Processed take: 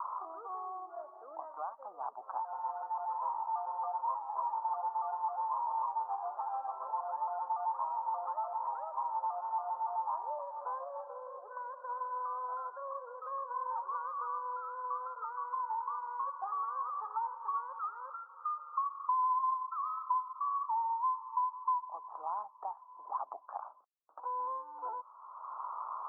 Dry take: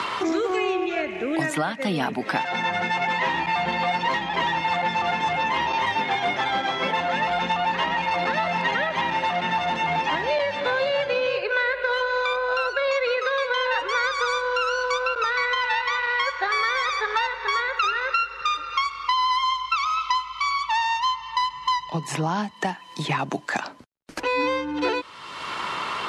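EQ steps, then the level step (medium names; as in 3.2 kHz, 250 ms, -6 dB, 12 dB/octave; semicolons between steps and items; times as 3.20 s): high-pass 840 Hz 24 dB/octave; steep low-pass 1.2 kHz 72 dB/octave; distance through air 250 m; -6.0 dB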